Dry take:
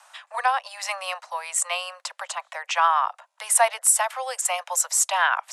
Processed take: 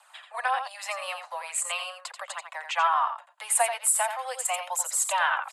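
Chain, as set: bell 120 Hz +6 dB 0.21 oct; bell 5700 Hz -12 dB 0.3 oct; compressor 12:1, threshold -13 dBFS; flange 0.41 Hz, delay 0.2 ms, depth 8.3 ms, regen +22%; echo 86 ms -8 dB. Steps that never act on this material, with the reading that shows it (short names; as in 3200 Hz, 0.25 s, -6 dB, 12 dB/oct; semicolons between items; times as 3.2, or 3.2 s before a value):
bell 120 Hz: input band starts at 450 Hz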